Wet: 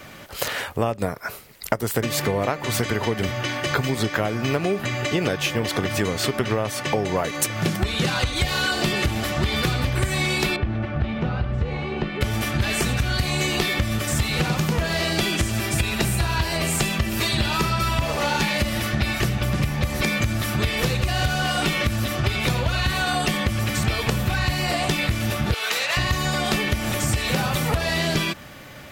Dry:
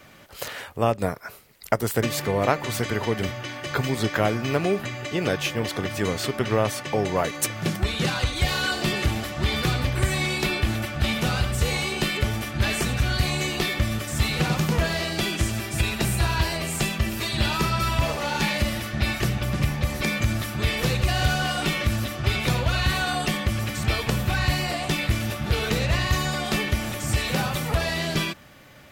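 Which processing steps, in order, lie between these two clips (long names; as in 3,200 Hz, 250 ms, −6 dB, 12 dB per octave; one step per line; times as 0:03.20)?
0:25.54–0:25.97: high-pass filter 890 Hz 12 dB per octave
downward compressor, threshold −27 dBFS, peak gain reduction 12.5 dB
0:10.56–0:12.21: head-to-tape spacing loss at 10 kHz 43 dB
level +8 dB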